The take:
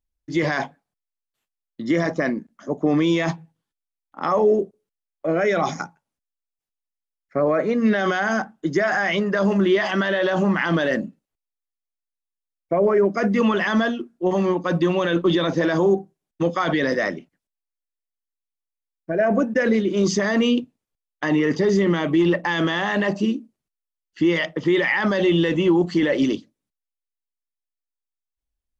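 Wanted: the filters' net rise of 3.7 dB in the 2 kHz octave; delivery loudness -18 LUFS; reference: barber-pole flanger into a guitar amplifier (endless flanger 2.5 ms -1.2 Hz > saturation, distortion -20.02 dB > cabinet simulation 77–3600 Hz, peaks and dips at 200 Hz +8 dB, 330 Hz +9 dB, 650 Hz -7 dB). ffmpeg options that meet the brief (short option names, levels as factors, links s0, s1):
-filter_complex "[0:a]equalizer=f=2000:t=o:g=4.5,asplit=2[s0][s1];[s1]adelay=2.5,afreqshift=-1.2[s2];[s0][s2]amix=inputs=2:normalize=1,asoftclip=threshold=0.2,highpass=77,equalizer=f=200:t=q:w=4:g=8,equalizer=f=330:t=q:w=4:g=9,equalizer=f=650:t=q:w=4:g=-7,lowpass=f=3600:w=0.5412,lowpass=f=3600:w=1.3066,volume=1.33"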